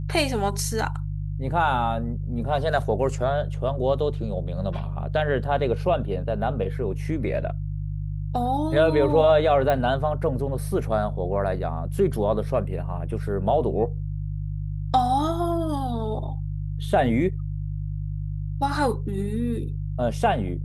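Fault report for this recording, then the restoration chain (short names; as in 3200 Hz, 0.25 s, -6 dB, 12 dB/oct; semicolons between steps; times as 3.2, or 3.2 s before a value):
hum 50 Hz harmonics 3 -29 dBFS
9.7 pop -12 dBFS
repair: de-click; de-hum 50 Hz, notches 3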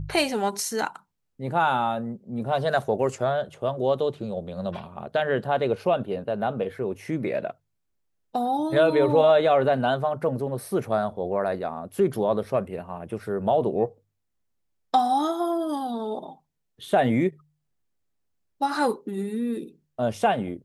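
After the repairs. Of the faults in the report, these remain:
none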